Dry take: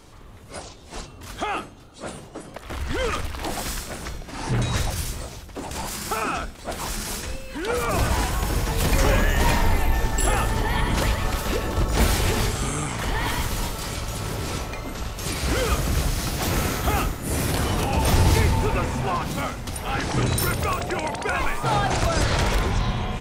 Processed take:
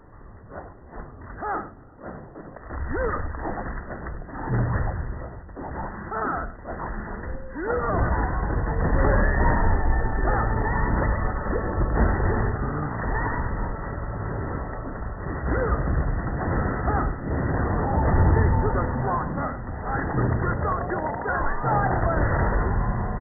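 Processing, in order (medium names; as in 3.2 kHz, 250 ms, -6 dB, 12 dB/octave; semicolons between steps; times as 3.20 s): brick-wall FIR low-pass 2 kHz; delay 100 ms -15 dB; attacks held to a fixed rise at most 150 dB/s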